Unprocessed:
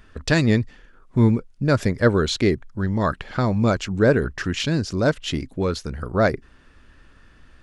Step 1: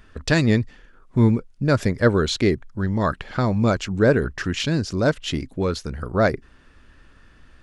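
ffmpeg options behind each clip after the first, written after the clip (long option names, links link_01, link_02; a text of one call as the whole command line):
ffmpeg -i in.wav -af anull out.wav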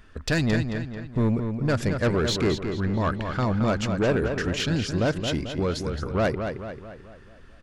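ffmpeg -i in.wav -filter_complex "[0:a]asoftclip=type=tanh:threshold=-16dB,asplit=2[link_01][link_02];[link_02]adelay=220,lowpass=frequency=4600:poles=1,volume=-6.5dB,asplit=2[link_03][link_04];[link_04]adelay=220,lowpass=frequency=4600:poles=1,volume=0.5,asplit=2[link_05][link_06];[link_06]adelay=220,lowpass=frequency=4600:poles=1,volume=0.5,asplit=2[link_07][link_08];[link_08]adelay=220,lowpass=frequency=4600:poles=1,volume=0.5,asplit=2[link_09][link_10];[link_10]adelay=220,lowpass=frequency=4600:poles=1,volume=0.5,asplit=2[link_11][link_12];[link_12]adelay=220,lowpass=frequency=4600:poles=1,volume=0.5[link_13];[link_03][link_05][link_07][link_09][link_11][link_13]amix=inputs=6:normalize=0[link_14];[link_01][link_14]amix=inputs=2:normalize=0,volume=-1.5dB" out.wav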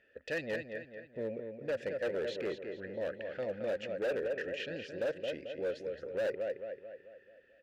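ffmpeg -i in.wav -filter_complex "[0:a]asplit=3[link_01][link_02][link_03];[link_01]bandpass=frequency=530:width_type=q:width=8,volume=0dB[link_04];[link_02]bandpass=frequency=1840:width_type=q:width=8,volume=-6dB[link_05];[link_03]bandpass=frequency=2480:width_type=q:width=8,volume=-9dB[link_06];[link_04][link_05][link_06]amix=inputs=3:normalize=0,asoftclip=type=hard:threshold=-30.5dB,volume=1dB" out.wav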